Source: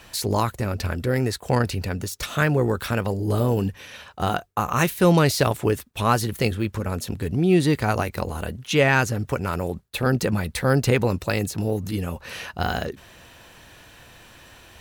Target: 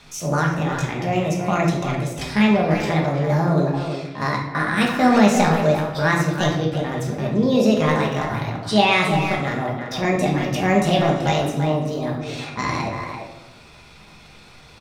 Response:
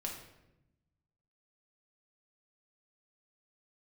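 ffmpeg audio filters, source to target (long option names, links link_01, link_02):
-filter_complex "[0:a]lowpass=5200,asetrate=62367,aresample=44100,atempo=0.707107,asplit=2[link_01][link_02];[link_02]adelay=340,highpass=300,lowpass=3400,asoftclip=type=hard:threshold=-13.5dB,volume=-6dB[link_03];[link_01][link_03]amix=inputs=2:normalize=0[link_04];[1:a]atrim=start_sample=2205[link_05];[link_04][link_05]afir=irnorm=-1:irlink=0,volume=1.5dB"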